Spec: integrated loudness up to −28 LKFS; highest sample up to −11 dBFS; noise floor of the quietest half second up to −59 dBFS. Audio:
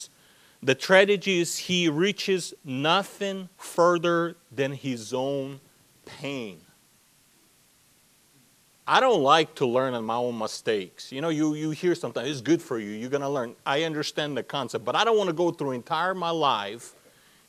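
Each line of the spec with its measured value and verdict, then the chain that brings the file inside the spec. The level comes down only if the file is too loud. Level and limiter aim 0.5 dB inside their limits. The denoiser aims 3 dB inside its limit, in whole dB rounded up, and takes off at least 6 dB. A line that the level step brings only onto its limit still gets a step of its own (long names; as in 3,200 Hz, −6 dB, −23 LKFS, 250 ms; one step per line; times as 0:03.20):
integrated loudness −25.5 LKFS: out of spec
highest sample −3.0 dBFS: out of spec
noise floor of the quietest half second −61 dBFS: in spec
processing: level −3 dB
brickwall limiter −11.5 dBFS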